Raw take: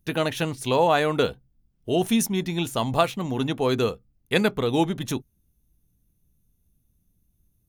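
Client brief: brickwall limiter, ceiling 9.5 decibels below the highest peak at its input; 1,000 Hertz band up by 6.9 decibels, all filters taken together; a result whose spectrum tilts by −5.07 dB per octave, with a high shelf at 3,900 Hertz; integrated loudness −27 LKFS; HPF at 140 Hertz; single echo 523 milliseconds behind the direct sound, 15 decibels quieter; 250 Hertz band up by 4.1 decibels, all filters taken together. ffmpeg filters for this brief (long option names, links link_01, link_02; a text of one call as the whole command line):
ffmpeg -i in.wav -af "highpass=140,equalizer=frequency=250:width_type=o:gain=5.5,equalizer=frequency=1000:width_type=o:gain=9,highshelf=frequency=3900:gain=-7,alimiter=limit=-9.5dB:level=0:latency=1,aecho=1:1:523:0.178,volume=-4.5dB" out.wav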